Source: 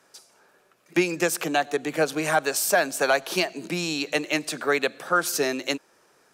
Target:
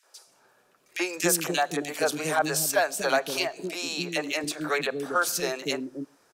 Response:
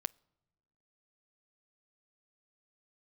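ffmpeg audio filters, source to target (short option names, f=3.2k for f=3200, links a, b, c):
-filter_complex "[0:a]asettb=1/sr,asplit=3[a][b][c];[a]atrim=end=1.134[d];[b]atrim=start=1.13:end=2.18,asetpts=PTS-STARTPTS,afade=t=in:d=0.004:c=qsin,afade=t=out:st=1.046:d=0.004:c=qsin,highshelf=f=3.9k:g=6.5[e];[c]atrim=start=2.176[f];[d][e]acrossfade=d=0.004:c1=hsin:c2=qsin[g];[g][f]acrossfade=d=0.004:c1=qsin:c2=hsin,asettb=1/sr,asplit=3[h][i][j];[h]atrim=end=3.344[k];[i]atrim=start=3.34:end=4.17,asetpts=PTS-STARTPTS,afade=t=in:d=0.004:c=qsin,afade=t=out:st=0.826:d=0.004:c=qsin,highpass=200[l];[j]atrim=start=4.166[m];[k][l]acrossfade=d=0.004:c1=hsin:c2=qsin[n];[n][m]acrossfade=d=0.004:c1=qsin:c2=hsin,acrossover=split=390|2000[o][p][q];[p]adelay=30[r];[o]adelay=270[s];[s][r][q]amix=inputs=3:normalize=0[t];[1:a]atrim=start_sample=2205,afade=t=out:st=0.18:d=0.01,atrim=end_sample=8379[u];[t][u]afir=irnorm=-1:irlink=0"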